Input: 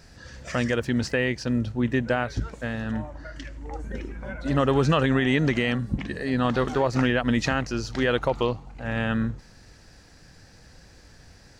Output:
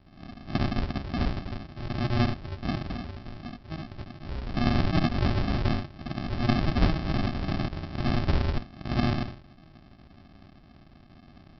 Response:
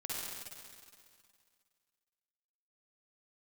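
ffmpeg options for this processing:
-filter_complex "[0:a]acrossover=split=4100[link_01][link_02];[link_02]acompressor=mode=upward:threshold=-49dB:ratio=2.5[link_03];[link_01][link_03]amix=inputs=2:normalize=0,highpass=frequency=970:width_type=q:width=1.7,afreqshift=-31,alimiter=limit=-16dB:level=0:latency=1:release=238,highshelf=frequency=3200:gain=-11.5[link_04];[1:a]atrim=start_sample=2205,atrim=end_sample=4410[link_05];[link_04][link_05]afir=irnorm=-1:irlink=0,aresample=11025,acrusher=samples=23:mix=1:aa=0.000001,aresample=44100,volume=8.5dB"

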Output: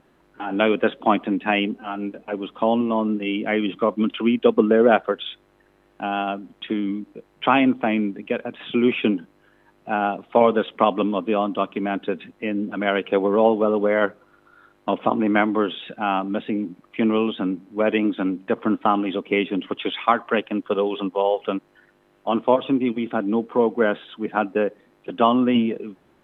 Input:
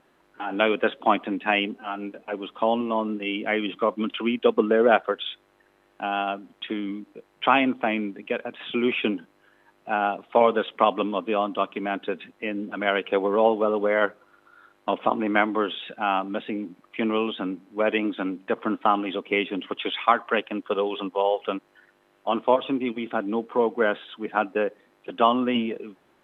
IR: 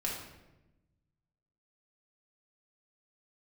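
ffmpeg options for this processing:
-af "lowshelf=frequency=300:gain=10.5"

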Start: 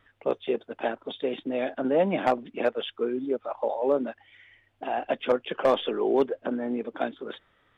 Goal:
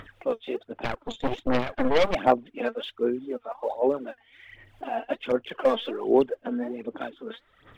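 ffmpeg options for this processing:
ffmpeg -i in.wav -filter_complex "[0:a]acompressor=mode=upward:threshold=-37dB:ratio=2.5,aphaser=in_gain=1:out_gain=1:delay=4.5:decay=0.65:speed=1.3:type=sinusoidal,asettb=1/sr,asplit=3[link_01][link_02][link_03];[link_01]atrim=end=0.844[link_04];[link_02]atrim=start=0.84:end=2.15,asetpts=PTS-STARTPTS,afade=type=in:duration=0.004:curve=qsin,afade=type=out:start_time=1.306:duration=0.004:curve=qsin,aeval=exprs='0.376*(cos(1*acos(clip(val(0)/0.376,-1,1)))-cos(1*PI/2))+0.0944*(cos(8*acos(clip(val(0)/0.376,-1,1)))-cos(8*PI/2))':channel_layout=same[link_05];[link_03]atrim=start=2.146[link_06];[link_04][link_05]acrossfade=duration=0.004:curve1=hsin:curve2=qsin[link_07];[link_07][link_06]acrossfade=duration=0.004:curve1=qsin:curve2=hsin,volume=-4dB" out.wav

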